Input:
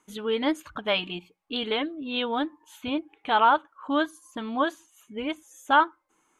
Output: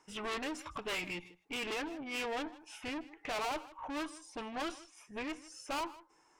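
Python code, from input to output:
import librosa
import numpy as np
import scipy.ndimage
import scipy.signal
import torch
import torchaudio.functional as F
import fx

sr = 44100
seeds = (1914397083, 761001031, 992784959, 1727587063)

y = fx.tube_stage(x, sr, drive_db=36.0, bias=0.25)
y = fx.peak_eq(y, sr, hz=220.0, db=-11.0, octaves=0.7)
y = y + 10.0 ** (-18.5 / 20.0) * np.pad(y, (int(157 * sr / 1000.0), 0))[:len(y)]
y = fx.formant_shift(y, sr, semitones=-3)
y = fx.high_shelf(y, sr, hz=8400.0, db=-6.0)
y = y * librosa.db_to_amplitude(2.0)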